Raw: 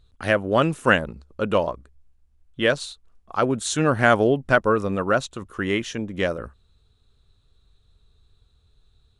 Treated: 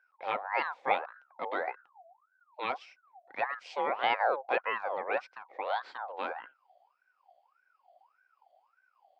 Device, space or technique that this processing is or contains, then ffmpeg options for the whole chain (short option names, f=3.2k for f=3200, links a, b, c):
voice changer toy: -af "aeval=exprs='val(0)*sin(2*PI*1100*n/s+1100*0.4/1.7*sin(2*PI*1.7*n/s))':c=same,highpass=500,equalizer=f=530:t=q:w=4:g=8,equalizer=f=750:t=q:w=4:g=9,equalizer=f=1.2k:t=q:w=4:g=-4,equalizer=f=1.8k:t=q:w=4:g=-3,equalizer=f=2.9k:t=q:w=4:g=-5,lowpass=f=3.8k:w=0.5412,lowpass=f=3.8k:w=1.3066,volume=-9dB"